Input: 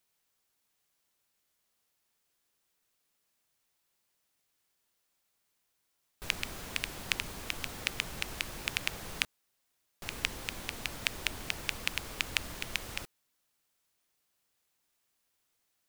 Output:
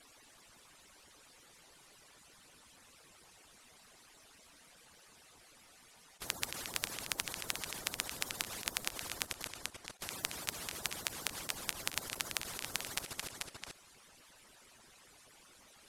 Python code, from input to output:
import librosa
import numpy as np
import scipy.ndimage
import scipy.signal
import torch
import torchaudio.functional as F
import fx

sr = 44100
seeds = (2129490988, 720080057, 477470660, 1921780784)

p1 = fx.hpss_only(x, sr, part='percussive')
p2 = scipy.signal.sosfilt(scipy.signal.butter(4, 11000.0, 'lowpass', fs=sr, output='sos'), p1)
p3 = fx.high_shelf(p2, sr, hz=2800.0, db=-6.0)
p4 = p3 + 10.0 ** (-8.5 / 20.0) * np.pad(p3, (int(224 * sr / 1000.0), 0))[:len(p3)]
p5 = fx.level_steps(p4, sr, step_db=19)
p6 = p5 + fx.echo_single(p5, sr, ms=438, db=-15.5, dry=0)
p7 = fx.spectral_comp(p6, sr, ratio=4.0)
y = F.gain(torch.from_numpy(p7), 8.0).numpy()